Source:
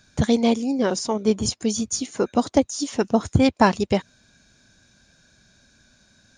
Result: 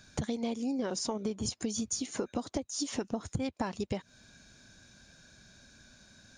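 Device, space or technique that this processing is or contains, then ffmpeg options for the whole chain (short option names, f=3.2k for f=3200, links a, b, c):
serial compression, peaks first: -af "acompressor=threshold=-26dB:ratio=5,acompressor=threshold=-32dB:ratio=2.5"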